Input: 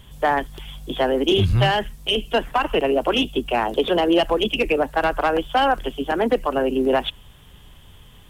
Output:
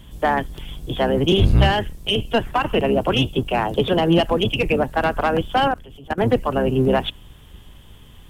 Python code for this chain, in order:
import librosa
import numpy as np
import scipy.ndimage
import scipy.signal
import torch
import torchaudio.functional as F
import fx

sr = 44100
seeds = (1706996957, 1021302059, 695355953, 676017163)

y = fx.octave_divider(x, sr, octaves=1, level_db=2.0)
y = fx.level_steps(y, sr, step_db=20, at=(5.68, 6.18))